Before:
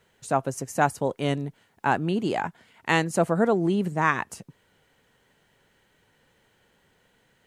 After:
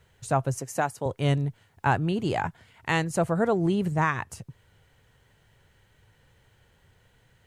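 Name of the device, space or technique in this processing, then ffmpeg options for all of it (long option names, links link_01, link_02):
car stereo with a boomy subwoofer: -filter_complex "[0:a]asettb=1/sr,asplit=3[link_01][link_02][link_03];[link_01]atrim=end=0.584[link_04];[link_02]atrim=start=0.58:end=1.06,asetpts=PTS-STARTPTS,afade=type=in:duration=0.004:curve=qsin,afade=type=out:start_time=0.476:duration=0.004:curve=qsin,highpass=220[link_05];[link_03]atrim=start=1.056[link_06];[link_04][link_05]acrossfade=duration=0.004:curve1=hsin:curve2=qsin[link_07];[link_07][link_06]acrossfade=duration=0.004:curve1=qsin:curve2=hsin,lowshelf=frequency=150:width_type=q:width=1.5:gain=10.5,alimiter=limit=-12.5dB:level=0:latency=1:release=491"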